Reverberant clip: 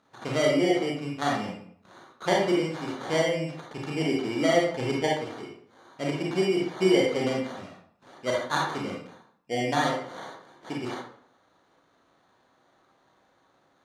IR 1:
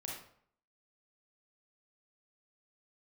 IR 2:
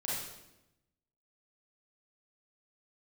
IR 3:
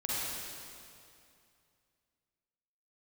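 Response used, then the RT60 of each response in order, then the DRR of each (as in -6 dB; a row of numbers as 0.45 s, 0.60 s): 1; 0.60 s, 0.95 s, 2.5 s; -3.0 dB, -7.5 dB, -8.0 dB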